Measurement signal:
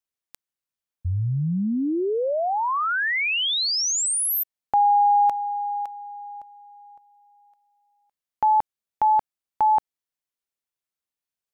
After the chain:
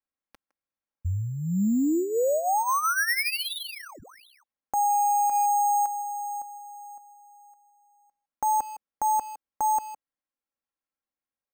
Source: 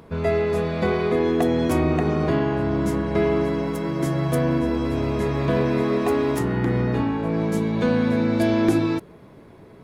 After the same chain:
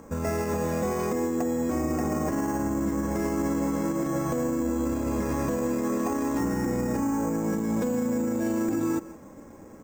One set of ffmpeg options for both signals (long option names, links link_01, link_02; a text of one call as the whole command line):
ffmpeg -i in.wav -filter_complex "[0:a]lowpass=1900,lowshelf=frequency=71:gain=-2.5,aecho=1:1:3.7:0.6,asplit=2[link_01][link_02];[link_02]adelay=160,highpass=300,lowpass=3400,asoftclip=type=hard:threshold=-15dB,volume=-21dB[link_03];[link_01][link_03]amix=inputs=2:normalize=0,acrusher=samples=6:mix=1:aa=0.000001,acompressor=threshold=-22dB:ratio=3:attack=37:release=52:knee=1:detection=rms,alimiter=limit=-19.5dB:level=0:latency=1:release=72" out.wav